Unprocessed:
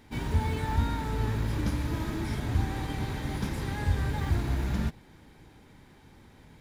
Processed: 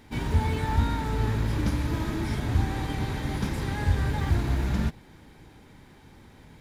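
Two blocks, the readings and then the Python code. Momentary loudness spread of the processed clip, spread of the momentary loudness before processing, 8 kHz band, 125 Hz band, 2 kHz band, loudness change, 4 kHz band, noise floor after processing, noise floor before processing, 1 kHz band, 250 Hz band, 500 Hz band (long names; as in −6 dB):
4 LU, 4 LU, +2.0 dB, +3.0 dB, +3.0 dB, +3.0 dB, +3.0 dB, −53 dBFS, −56 dBFS, +3.0 dB, +3.0 dB, +3.0 dB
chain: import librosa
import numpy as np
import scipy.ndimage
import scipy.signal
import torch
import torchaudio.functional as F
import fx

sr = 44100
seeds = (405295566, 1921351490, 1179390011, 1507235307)

y = fx.doppler_dist(x, sr, depth_ms=0.12)
y = F.gain(torch.from_numpy(y), 3.0).numpy()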